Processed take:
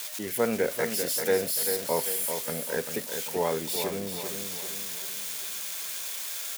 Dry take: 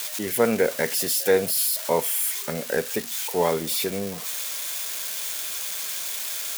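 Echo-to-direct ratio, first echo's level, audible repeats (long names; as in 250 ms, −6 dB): −6.0 dB, −7.0 dB, 5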